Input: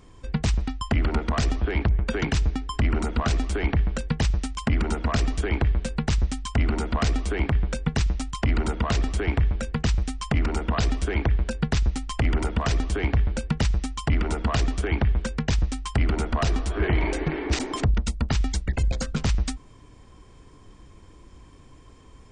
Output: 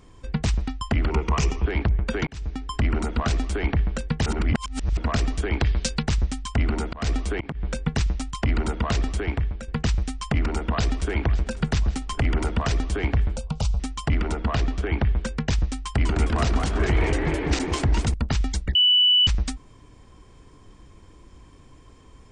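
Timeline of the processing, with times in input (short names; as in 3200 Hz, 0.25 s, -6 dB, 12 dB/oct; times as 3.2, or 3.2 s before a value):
1.1–1.66 ripple EQ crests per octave 0.76, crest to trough 10 dB
2.27–2.7 fade in
4.26–4.97 reverse
5.6–6.03 bell 5300 Hz +15 dB 1.7 oct
6.62–7.65 auto swell 0.17 s
9.1–9.68 fade out, to -8 dB
10.43–11.1 echo throw 0.55 s, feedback 65%, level -16 dB
11.61–12.62 three-band squash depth 40%
13.36–13.8 fixed phaser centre 750 Hz, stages 4
14.32–14.99 air absorption 96 m
15.78–18.14 warbling echo 0.205 s, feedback 50%, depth 219 cents, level -4 dB
18.75–19.27 bleep 2970 Hz -14 dBFS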